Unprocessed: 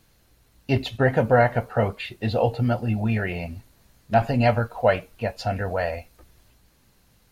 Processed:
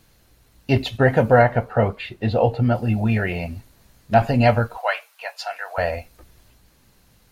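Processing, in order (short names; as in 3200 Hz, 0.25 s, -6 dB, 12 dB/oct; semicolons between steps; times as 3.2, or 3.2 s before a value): 1.42–2.75 high shelf 4200 Hz -10 dB; 4.77–5.78 HPF 810 Hz 24 dB/oct; gain +3.5 dB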